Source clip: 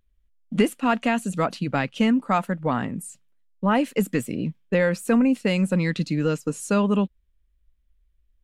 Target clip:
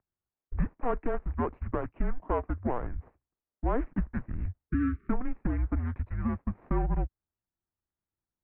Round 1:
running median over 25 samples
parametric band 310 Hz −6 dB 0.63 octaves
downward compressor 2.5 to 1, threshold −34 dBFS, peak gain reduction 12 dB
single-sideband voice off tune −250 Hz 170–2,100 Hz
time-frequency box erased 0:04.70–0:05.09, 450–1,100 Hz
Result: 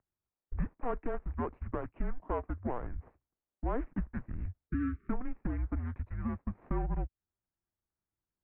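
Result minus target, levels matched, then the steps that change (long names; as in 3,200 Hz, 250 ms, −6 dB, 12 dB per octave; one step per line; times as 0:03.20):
downward compressor: peak gain reduction +5 dB
change: downward compressor 2.5 to 1, threshold −25.5 dBFS, peak gain reduction 7 dB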